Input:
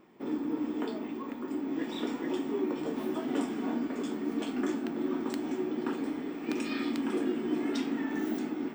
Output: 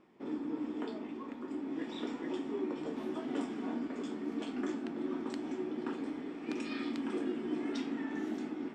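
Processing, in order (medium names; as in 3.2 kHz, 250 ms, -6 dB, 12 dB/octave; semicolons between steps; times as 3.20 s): low-pass 7.5 kHz 12 dB/octave; trim -5 dB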